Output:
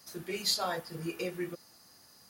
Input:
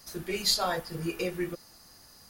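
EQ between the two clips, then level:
high-pass filter 110 Hz 12 dB per octave
−4.0 dB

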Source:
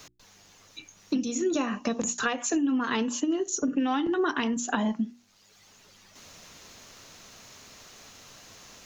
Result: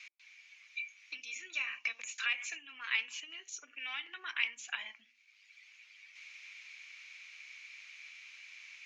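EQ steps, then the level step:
four-pole ladder band-pass 2,400 Hz, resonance 85%
+6.5 dB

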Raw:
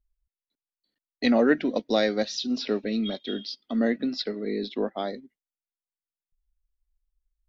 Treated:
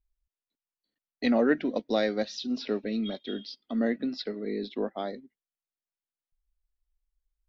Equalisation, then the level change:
high-shelf EQ 5,200 Hz −8 dB
−3.0 dB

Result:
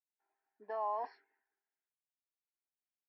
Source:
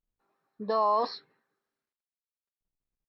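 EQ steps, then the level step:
band-pass filter 570–2,800 Hz
phaser with its sweep stopped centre 790 Hz, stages 8
−5.5 dB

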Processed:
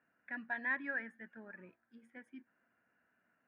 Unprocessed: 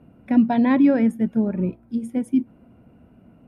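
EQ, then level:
resonant band-pass 1,700 Hz, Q 11
+4.0 dB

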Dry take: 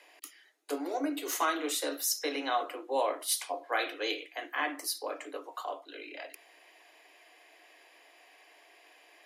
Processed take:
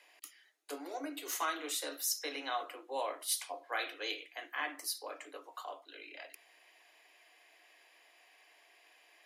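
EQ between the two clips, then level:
tilt shelving filter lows −4 dB, about 680 Hz
−7.5 dB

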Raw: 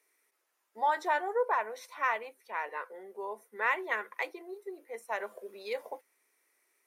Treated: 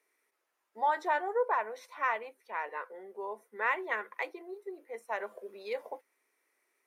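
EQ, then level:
high-shelf EQ 3,900 Hz −7.5 dB
0.0 dB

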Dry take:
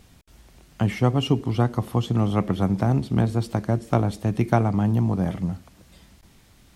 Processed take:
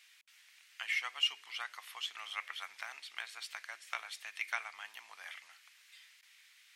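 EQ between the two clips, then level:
four-pole ladder high-pass 1,700 Hz, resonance 40%
high-shelf EQ 6,100 Hz −6 dB
+6.0 dB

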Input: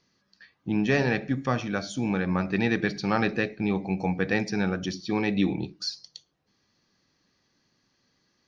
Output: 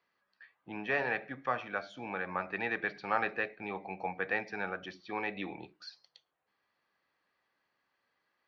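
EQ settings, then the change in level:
three-way crossover with the lows and the highs turned down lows −20 dB, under 530 Hz, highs −22 dB, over 3,200 Hz
high-shelf EQ 4,300 Hz −7.5 dB
−1.5 dB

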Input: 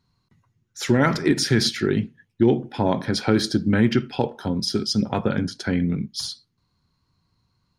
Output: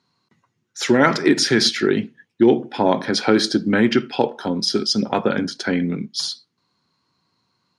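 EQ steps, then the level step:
band-pass filter 250–8,000 Hz
+5.5 dB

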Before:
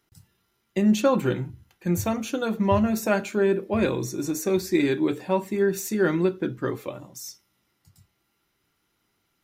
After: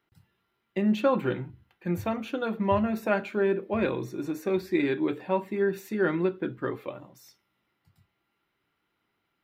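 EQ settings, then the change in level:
high-frequency loss of the air 480 metres
RIAA equalisation recording
low-shelf EQ 190 Hz +8 dB
0.0 dB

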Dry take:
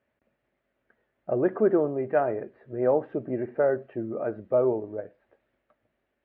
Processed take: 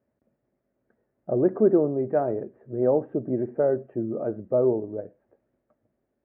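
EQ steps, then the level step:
resonant band-pass 270 Hz, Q 0.5
high-frequency loss of the air 230 metres
low-shelf EQ 200 Hz +6 dB
+2.5 dB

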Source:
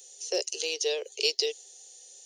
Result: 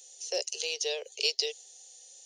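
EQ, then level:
four-pole ladder high-pass 440 Hz, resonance 20%
parametric band 1,200 Hz −4.5 dB 1 octave
high-shelf EQ 11,000 Hz −5.5 dB
+4.5 dB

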